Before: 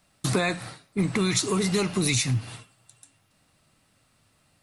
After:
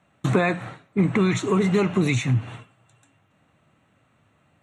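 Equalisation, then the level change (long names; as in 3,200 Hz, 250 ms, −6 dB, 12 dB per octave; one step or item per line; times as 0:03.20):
moving average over 9 samples
high-pass filter 81 Hz
+5.0 dB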